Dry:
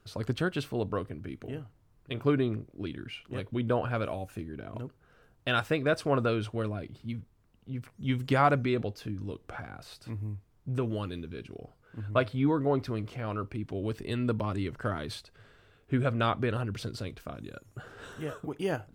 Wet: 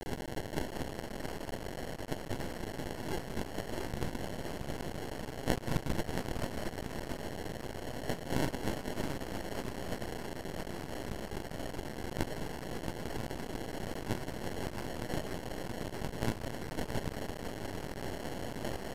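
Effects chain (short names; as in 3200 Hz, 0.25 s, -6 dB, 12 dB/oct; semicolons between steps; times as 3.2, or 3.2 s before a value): steep high-pass 1900 Hz 96 dB/oct; echo 0.196 s -11.5 dB; in parallel at +2.5 dB: compressor 6:1, threshold -49 dBFS, peak gain reduction 19 dB; on the sum: requantised 8-bit, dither triangular; transient shaper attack -8 dB, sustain -4 dB; sample-and-hold 36×; on a send: feedback echo 0.674 s, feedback 23%, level -6.5 dB; on the sum: half-wave rectifier; downsampling 32000 Hz; gain +10 dB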